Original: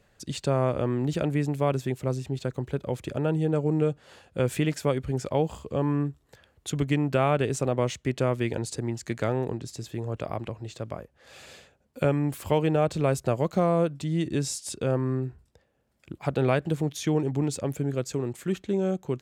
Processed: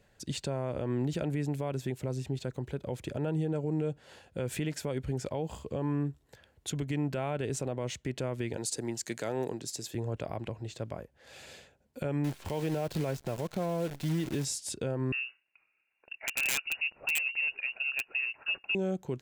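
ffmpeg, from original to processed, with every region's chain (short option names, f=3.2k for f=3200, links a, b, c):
-filter_complex "[0:a]asettb=1/sr,asplit=3[a][b][c];[a]atrim=end=8.574[d];[b]atrim=start=8.57:end=9.95,asetpts=PTS-STARTPTS,afade=t=in:d=0.004:c=qsin,afade=t=out:st=1.376:d=0.004:c=qsin,highpass=130,bass=f=250:g=-5,treble=f=4k:g=8[e];[c]atrim=start=9.946[f];[d][e]acrossfade=d=0.004:c1=hsin:c2=qsin[g];[g][f]acrossfade=d=0.004:c1=qsin:c2=hsin,asettb=1/sr,asplit=3[h][i][j];[h]atrim=end=12.244[k];[i]atrim=start=12.24:end=14.45,asetpts=PTS-STARTPTS,afade=t=in:d=0.004:c=qsin,afade=t=out:st=2.206:d=0.004:c=qsin,acrossover=split=5800[l][m];[m]acompressor=threshold=-58dB:ratio=4:attack=1:release=60[n];[l][n]amix=inputs=2:normalize=0,acrusher=bits=7:dc=4:mix=0:aa=0.000001[o];[j]atrim=start=14.446[p];[k][o]acrossfade=d=0.004:c1=hsin:c2=qsin[q];[q][p]acrossfade=d=0.004:c1=qsin:c2=hsin,asettb=1/sr,asplit=3[r][s][t];[r]atrim=end=15.124[u];[s]atrim=start=15.12:end=18.75,asetpts=PTS-STARTPTS,afade=t=in:d=0.004:c=qsin,afade=t=out:st=3.626:d=0.004:c=qsin,highpass=f=220:w=0.5412,highpass=f=220:w=1.3066,lowpass=f=2.6k:t=q:w=0.5098,lowpass=f=2.6k:t=q:w=0.6013,lowpass=f=2.6k:t=q:w=0.9,lowpass=f=2.6k:t=q:w=2.563,afreqshift=-3000,aeval=exprs='(mod(7.94*val(0)+1,2)-1)/7.94':c=same[v];[t]atrim=start=18.746[w];[u][v]acrossfade=d=0.004:c1=hsin:c2=qsin[x];[x][w]acrossfade=d=0.004:c1=qsin:c2=hsin,bandreject=f=1.2k:w=7.5,alimiter=limit=-21dB:level=0:latency=1:release=94,volume=-2dB"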